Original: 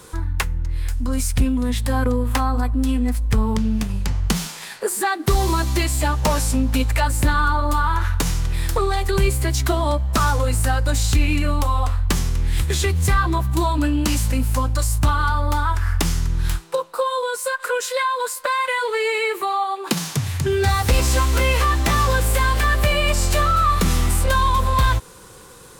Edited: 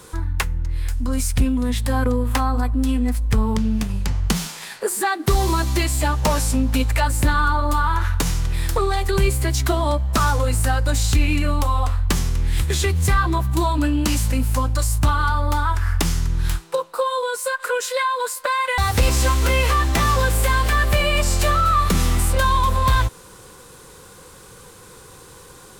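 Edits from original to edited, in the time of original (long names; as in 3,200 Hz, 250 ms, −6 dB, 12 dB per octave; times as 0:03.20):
0:18.78–0:20.69: remove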